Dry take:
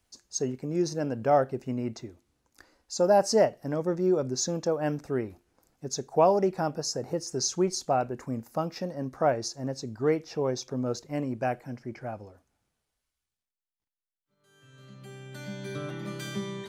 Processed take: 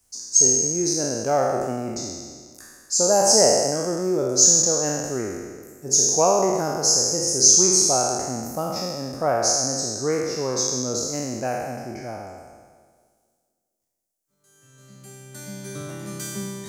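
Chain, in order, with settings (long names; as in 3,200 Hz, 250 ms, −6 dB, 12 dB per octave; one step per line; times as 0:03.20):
peak hold with a decay on every bin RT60 1.64 s
high shelf with overshoot 4,800 Hz +11 dB, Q 1.5
tape delay 232 ms, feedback 61%, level −22 dB, low-pass 1,100 Hz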